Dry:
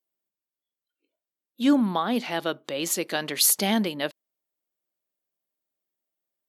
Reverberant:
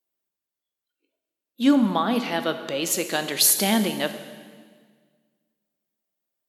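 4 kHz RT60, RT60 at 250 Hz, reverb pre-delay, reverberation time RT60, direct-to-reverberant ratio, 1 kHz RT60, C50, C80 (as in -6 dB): 1.6 s, 2.0 s, 11 ms, 1.7 s, 8.5 dB, 1.6 s, 10.0 dB, 11.5 dB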